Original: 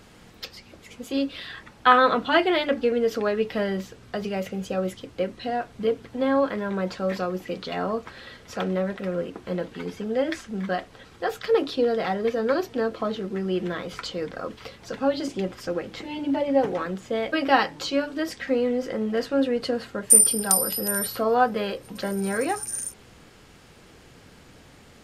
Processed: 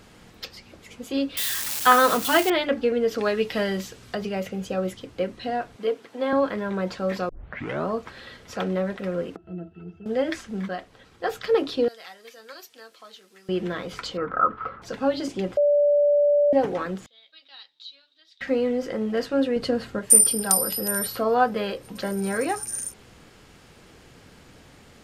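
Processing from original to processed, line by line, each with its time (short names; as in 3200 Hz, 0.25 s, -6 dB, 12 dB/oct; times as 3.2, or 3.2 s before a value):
1.37–2.5 switching spikes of -17.5 dBFS
3.18–4.15 high shelf 2600 Hz +9 dB
5.76–6.33 HPF 340 Hz
7.29 tape start 0.58 s
9.36–10.06 octave resonator E, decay 0.11 s
10.68–11.24 gain -5 dB
11.88–13.49 differentiator
14.17–14.82 synth low-pass 1300 Hz, resonance Q 13
15.57–16.53 bleep 582 Hz -15.5 dBFS
17.06–18.41 band-pass 3800 Hz, Q 17
19.56–19.99 low shelf 240 Hz +7.5 dB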